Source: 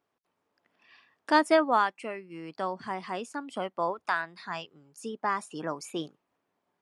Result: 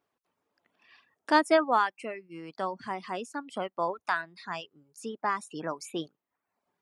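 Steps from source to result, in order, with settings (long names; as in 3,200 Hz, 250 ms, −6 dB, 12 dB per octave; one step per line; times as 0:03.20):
reverb reduction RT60 0.65 s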